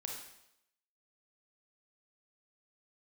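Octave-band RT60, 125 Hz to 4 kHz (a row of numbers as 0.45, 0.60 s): 0.80, 0.75, 0.80, 0.80, 0.75, 0.80 s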